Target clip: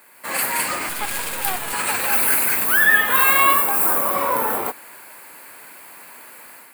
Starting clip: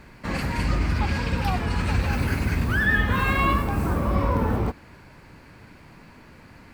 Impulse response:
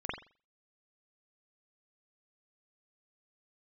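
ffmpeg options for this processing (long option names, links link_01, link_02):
-filter_complex "[0:a]highpass=610,asettb=1/sr,asplit=3[link_01][link_02][link_03];[link_01]atrim=end=0.894[link_04];[link_02]atrim=start=0.89:end=1.73,asetpts=PTS-STARTPTS,afade=type=in:duration=0.004:curve=qsin,afade=type=out:start_time=0.836:duration=0.004:curve=qsin,aeval=exprs='max(val(0),0)':channel_layout=same[link_05];[link_03]atrim=start=1.726[link_06];[link_04][link_05]acrossfade=duration=0.004:curve1=hsin:curve2=qsin[link_07];[link_07][link_06]acrossfade=duration=0.004:curve1=qsin:curve2=hsin,dynaudnorm=framelen=110:gausssize=5:maxgain=9dB,aexciter=amount=6.6:drive=8.3:freq=8100,volume=-1dB"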